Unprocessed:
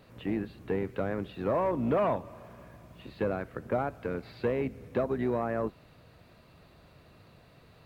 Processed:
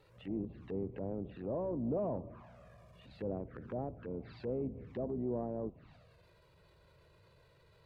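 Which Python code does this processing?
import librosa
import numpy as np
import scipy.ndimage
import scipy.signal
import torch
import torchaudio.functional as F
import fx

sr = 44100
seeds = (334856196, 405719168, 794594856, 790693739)

y = fx.env_lowpass_down(x, sr, base_hz=620.0, full_db=-29.5)
y = fx.env_flanger(y, sr, rest_ms=2.4, full_db=-31.5)
y = fx.transient(y, sr, attack_db=-6, sustain_db=5)
y = F.gain(torch.from_numpy(y), -5.0).numpy()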